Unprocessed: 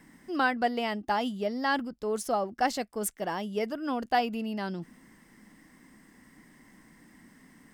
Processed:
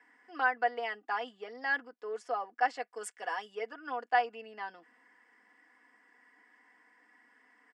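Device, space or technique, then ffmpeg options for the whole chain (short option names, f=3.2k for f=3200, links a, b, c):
phone speaker on a table: -filter_complex "[0:a]asettb=1/sr,asplit=3[a][b][c];[a]atrim=end=2.944[d];[b]atrim=start=2.94:end=3.55,asetpts=PTS-STARTPTS,afade=t=in:d=0.004:c=qsin,afade=t=out:st=0.606:d=0.004:c=qsin,aemphasis=mode=production:type=75kf[e];[c]atrim=start=3.546[f];[d][e]acrossfade=d=0.004:c1=hsin:c2=qsin[g];[g][f]acrossfade=d=0.004:c1=qsin:c2=hsin,lowpass=10k,highpass=f=450:w=0.5412,highpass=f=450:w=1.3066,equalizer=f=570:t=q:w=4:g=-9,equalizer=f=1.7k:t=q:w=4:g=5,equalizer=f=3.9k:t=q:w=4:g=-9,equalizer=f=6.2k:t=q:w=4:g=-9,lowpass=f=7.4k:w=0.5412,lowpass=f=7.4k:w=1.3066,highshelf=f=3.8k:g=-10,aecho=1:1:4.1:0.77,volume=-4dB"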